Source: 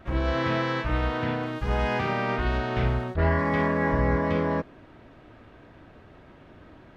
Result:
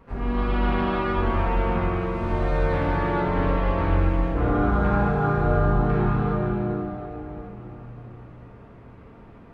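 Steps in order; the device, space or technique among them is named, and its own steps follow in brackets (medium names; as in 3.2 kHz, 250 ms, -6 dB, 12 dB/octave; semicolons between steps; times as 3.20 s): slowed and reverbed (tape speed -27%; reverberation RT60 4.1 s, pre-delay 24 ms, DRR -3.5 dB); trim -2.5 dB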